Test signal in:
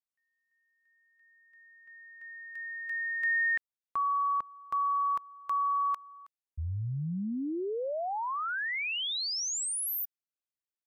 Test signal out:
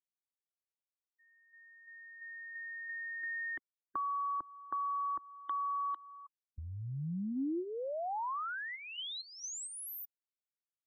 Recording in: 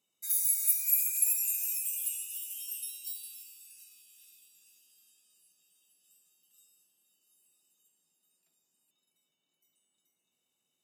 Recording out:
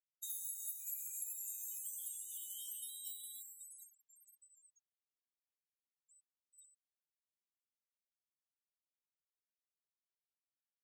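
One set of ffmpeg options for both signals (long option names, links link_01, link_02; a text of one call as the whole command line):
ffmpeg -i in.wav -filter_complex "[0:a]superequalizer=6b=3.16:12b=0.398:13b=2.24:14b=0.355:15b=2,afftfilt=real='re*gte(hypot(re,im),0.00631)':imag='im*gte(hypot(re,im),0.00631)':win_size=1024:overlap=0.75,acrossover=split=160|1100[link_01][link_02][link_03];[link_01]acompressor=threshold=-45dB:ratio=4[link_04];[link_02]acompressor=threshold=-37dB:ratio=4[link_05];[link_03]acompressor=threshold=-44dB:ratio=4[link_06];[link_04][link_05][link_06]amix=inputs=3:normalize=0,volume=-1dB" out.wav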